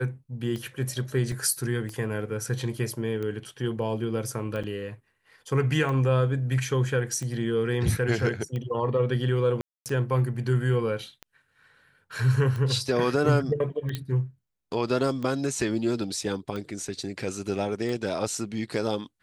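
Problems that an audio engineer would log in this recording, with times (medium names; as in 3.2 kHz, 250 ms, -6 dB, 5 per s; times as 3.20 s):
tick 45 rpm -22 dBFS
1.32 s: dropout 2.7 ms
4.63–4.64 s: dropout 6.3 ms
9.61–9.86 s: dropout 248 ms
13.95 s: pop -16 dBFS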